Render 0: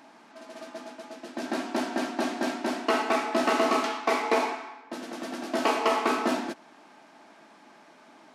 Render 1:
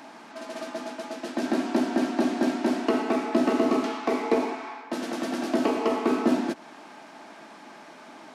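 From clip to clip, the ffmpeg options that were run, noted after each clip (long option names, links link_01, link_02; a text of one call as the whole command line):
ffmpeg -i in.wav -filter_complex "[0:a]acrossover=split=450[link_01][link_02];[link_02]acompressor=threshold=-40dB:ratio=4[link_03];[link_01][link_03]amix=inputs=2:normalize=0,volume=7.5dB" out.wav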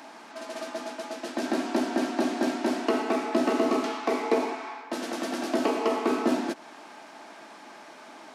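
ffmpeg -i in.wav -af "bass=frequency=250:gain=-7,treble=frequency=4000:gain=2" out.wav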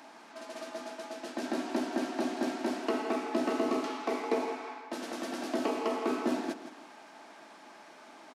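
ffmpeg -i in.wav -af "aecho=1:1:164|328|492:0.251|0.0829|0.0274,volume=-6dB" out.wav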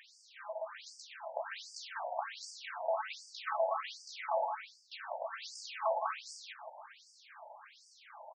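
ffmpeg -i in.wav -af "afftfilt=real='re*between(b*sr/1024,670*pow(6600/670,0.5+0.5*sin(2*PI*1.3*pts/sr))/1.41,670*pow(6600/670,0.5+0.5*sin(2*PI*1.3*pts/sr))*1.41)':imag='im*between(b*sr/1024,670*pow(6600/670,0.5+0.5*sin(2*PI*1.3*pts/sr))/1.41,670*pow(6600/670,0.5+0.5*sin(2*PI*1.3*pts/sr))*1.41)':win_size=1024:overlap=0.75,volume=4dB" out.wav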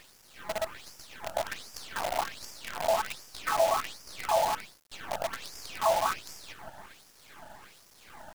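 ffmpeg -i in.wav -af "acrusher=bits=7:dc=4:mix=0:aa=0.000001,volume=7dB" out.wav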